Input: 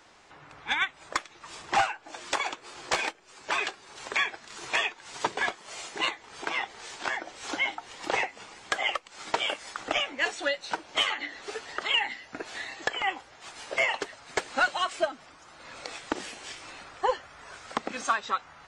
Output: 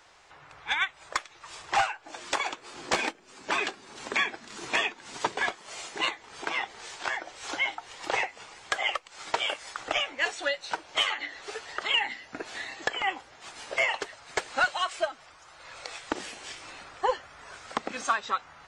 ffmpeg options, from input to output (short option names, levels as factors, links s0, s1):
-af "asetnsamples=n=441:p=0,asendcmd='2.04 equalizer g 0.5;2.74 equalizer g 10;5.18 equalizer g -0.5;6.89 equalizer g -7;11.84 equalizer g 0.5;13.71 equalizer g -6;14.64 equalizer g -13;16.09 equalizer g -1.5',equalizer=f=240:t=o:w=1.1:g=-10.5"